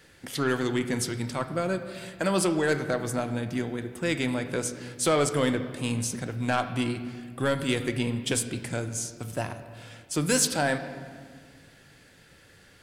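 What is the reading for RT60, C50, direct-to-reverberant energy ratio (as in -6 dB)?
1.7 s, 10.5 dB, 8.0 dB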